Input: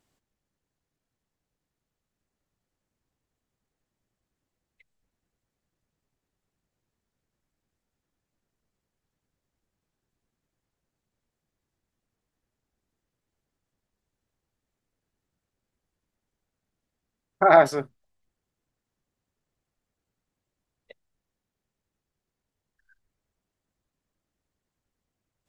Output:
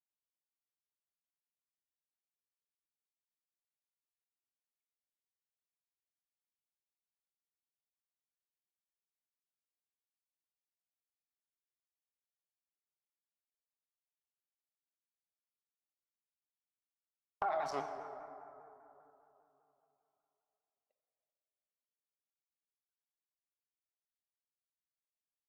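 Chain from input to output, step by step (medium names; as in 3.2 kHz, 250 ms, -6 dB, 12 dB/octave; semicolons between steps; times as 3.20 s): local Wiener filter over 25 samples; frequency weighting D; gate -37 dBFS, range -37 dB; high-order bell 890 Hz +15 dB 1.1 oct; peak limiter -9.5 dBFS, peak gain reduction 18.5 dB; compression 3:1, threshold -39 dBFS, peak gain reduction 18 dB; plate-style reverb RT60 3.2 s, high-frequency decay 0.35×, DRR 4.5 dB; vibrato with a chosen wave saw down 5 Hz, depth 100 cents; trim -1.5 dB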